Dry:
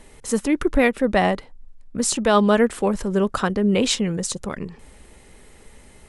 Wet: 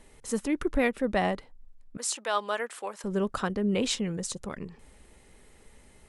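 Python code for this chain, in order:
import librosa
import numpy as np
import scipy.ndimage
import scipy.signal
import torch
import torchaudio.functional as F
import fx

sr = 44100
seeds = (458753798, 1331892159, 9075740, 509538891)

y = fx.highpass(x, sr, hz=720.0, slope=12, at=(1.97, 3.04))
y = y * librosa.db_to_amplitude(-8.0)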